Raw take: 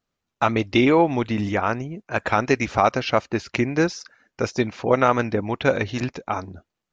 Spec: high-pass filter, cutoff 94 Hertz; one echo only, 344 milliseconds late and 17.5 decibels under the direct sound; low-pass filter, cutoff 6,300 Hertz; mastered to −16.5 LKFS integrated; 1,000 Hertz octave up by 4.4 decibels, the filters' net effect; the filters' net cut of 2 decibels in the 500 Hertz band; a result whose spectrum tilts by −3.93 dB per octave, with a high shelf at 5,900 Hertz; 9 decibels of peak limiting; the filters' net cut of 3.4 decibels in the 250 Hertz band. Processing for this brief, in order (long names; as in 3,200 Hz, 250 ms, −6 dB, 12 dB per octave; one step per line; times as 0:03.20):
high-pass filter 94 Hz
low-pass filter 6,300 Hz
parametric band 250 Hz −3.5 dB
parametric band 500 Hz −3.5 dB
parametric band 1,000 Hz +7 dB
high-shelf EQ 5,900 Hz +3 dB
brickwall limiter −9.5 dBFS
single-tap delay 344 ms −17.5 dB
level +8 dB